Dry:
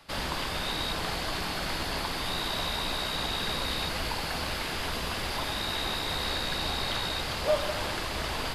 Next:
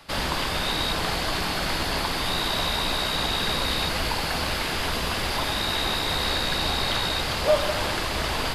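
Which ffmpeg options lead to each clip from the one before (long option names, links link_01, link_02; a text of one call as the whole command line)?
ffmpeg -i in.wav -af "acontrast=45" out.wav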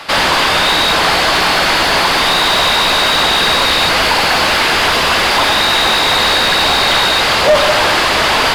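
ffmpeg -i in.wav -filter_complex "[0:a]asplit=2[link_01][link_02];[link_02]highpass=frequency=720:poles=1,volume=22dB,asoftclip=type=tanh:threshold=-8.5dB[link_03];[link_01][link_03]amix=inputs=2:normalize=0,lowpass=frequency=3400:poles=1,volume=-6dB,volume=6.5dB" out.wav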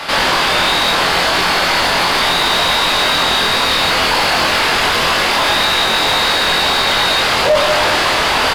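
ffmpeg -i in.wav -filter_complex "[0:a]alimiter=limit=-14dB:level=0:latency=1,asplit=2[link_01][link_02];[link_02]adelay=23,volume=-3dB[link_03];[link_01][link_03]amix=inputs=2:normalize=0,volume=4dB" out.wav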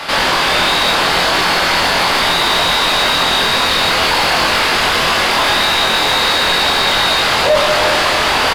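ffmpeg -i in.wav -af "aecho=1:1:338:0.316" out.wav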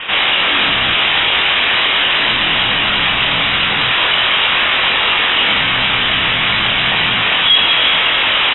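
ffmpeg -i in.wav -af "lowpass=frequency=3300:width_type=q:width=0.5098,lowpass=frequency=3300:width_type=q:width=0.6013,lowpass=frequency=3300:width_type=q:width=0.9,lowpass=frequency=3300:width_type=q:width=2.563,afreqshift=-3900,volume=1dB" out.wav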